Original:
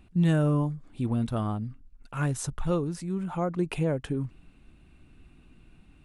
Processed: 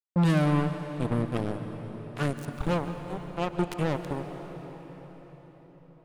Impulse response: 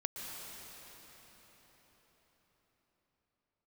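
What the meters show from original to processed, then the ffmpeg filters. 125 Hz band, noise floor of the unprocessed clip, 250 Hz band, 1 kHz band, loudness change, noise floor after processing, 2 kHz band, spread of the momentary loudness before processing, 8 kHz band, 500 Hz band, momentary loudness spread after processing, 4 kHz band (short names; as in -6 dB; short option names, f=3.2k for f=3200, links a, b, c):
-1.0 dB, -57 dBFS, -0.5 dB, +3.5 dB, -0.5 dB, -54 dBFS, +3.5 dB, 9 LU, -8.0 dB, +0.5 dB, 19 LU, +3.0 dB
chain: -filter_complex "[0:a]acrusher=bits=3:mix=0:aa=0.5,asplit=2[a][b];[1:a]atrim=start_sample=2205[c];[b][c]afir=irnorm=-1:irlink=0,volume=-2.5dB[d];[a][d]amix=inputs=2:normalize=0,volume=-5dB"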